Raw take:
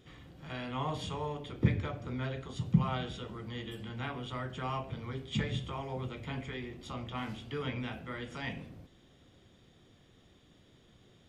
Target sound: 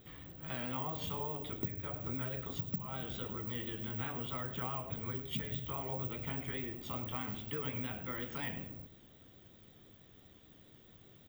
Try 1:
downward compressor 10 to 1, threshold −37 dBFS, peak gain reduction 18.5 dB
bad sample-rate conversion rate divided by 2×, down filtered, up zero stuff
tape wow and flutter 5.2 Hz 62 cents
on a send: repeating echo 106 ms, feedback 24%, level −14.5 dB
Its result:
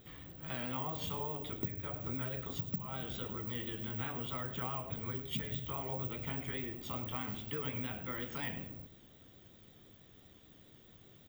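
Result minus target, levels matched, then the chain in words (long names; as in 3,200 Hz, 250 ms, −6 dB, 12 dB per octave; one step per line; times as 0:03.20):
8,000 Hz band +2.5 dB
downward compressor 10 to 1, threshold −37 dBFS, peak gain reduction 18.5 dB
high-shelf EQ 6,500 Hz −5 dB
bad sample-rate conversion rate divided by 2×, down filtered, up zero stuff
tape wow and flutter 5.2 Hz 62 cents
on a send: repeating echo 106 ms, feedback 24%, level −14.5 dB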